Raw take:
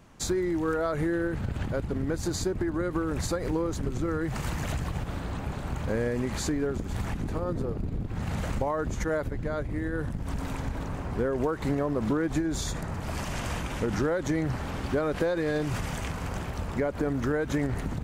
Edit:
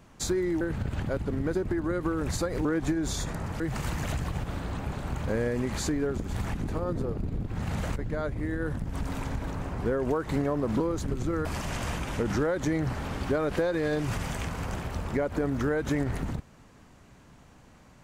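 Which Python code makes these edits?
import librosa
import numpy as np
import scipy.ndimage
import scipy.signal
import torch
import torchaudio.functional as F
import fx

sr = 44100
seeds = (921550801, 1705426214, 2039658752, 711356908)

y = fx.edit(x, sr, fx.cut(start_s=0.61, length_s=0.63),
    fx.cut(start_s=2.18, length_s=0.27),
    fx.swap(start_s=3.55, length_s=0.65, other_s=12.13, other_length_s=0.95),
    fx.cut(start_s=8.56, length_s=0.73), tone=tone)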